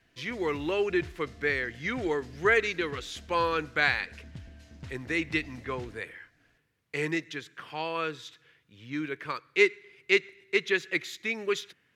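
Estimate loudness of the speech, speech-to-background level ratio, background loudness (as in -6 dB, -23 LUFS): -29.5 LUFS, 19.0 dB, -48.5 LUFS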